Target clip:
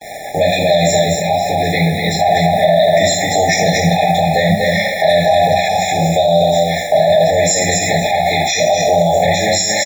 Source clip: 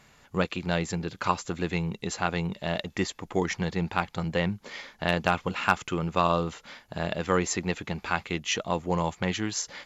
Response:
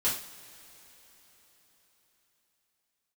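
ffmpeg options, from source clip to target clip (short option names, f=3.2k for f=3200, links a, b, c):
-filter_complex "[0:a]asettb=1/sr,asplit=3[a][b][c];[a]atrim=end=0.904[d];[b]atrim=start=0.9:end=2.93,asetpts=PTS-STARTPTS,afade=t=in:d=0.004:c=qsin,afade=t=out:st=2.026:d=0.004:c=qsin,lowpass=3.8k[e];[c]atrim=start=2.926[f];[d][e]acrossfade=d=0.004:c1=hsin:c2=qsin[g];[g][f]acrossfade=d=0.004:c1=qsin:c2=hsin[h];[1:a]atrim=start_sample=2205,afade=t=out:st=0.38:d=0.01,atrim=end_sample=17199[i];[h][i]afir=irnorm=-1:irlink=0,acrossover=split=160|3000[j][k][l];[k]acompressor=threshold=-38dB:ratio=3[m];[j][m][l]amix=inputs=3:normalize=0,highpass=f=72:p=1,lowshelf=f=510:t=q:w=3:g=-7.5,acrusher=bits=7:mix=0:aa=0.000001,equalizer=f=720:t=o:w=1.7:g=13,bandreject=f=970:w=9.2,aecho=1:1:241:0.531,alimiter=level_in=19dB:limit=-1dB:release=50:level=0:latency=1,afftfilt=real='re*eq(mod(floor(b*sr/1024/840),2),0)':imag='im*eq(mod(floor(b*sr/1024/840),2),0)':win_size=1024:overlap=0.75,volume=-1.5dB"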